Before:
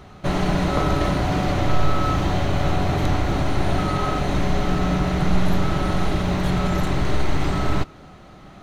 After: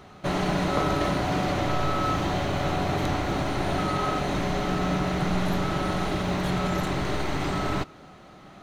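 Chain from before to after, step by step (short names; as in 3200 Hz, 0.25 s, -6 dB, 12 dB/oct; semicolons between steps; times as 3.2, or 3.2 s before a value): low shelf 95 Hz -12 dB; gain -2 dB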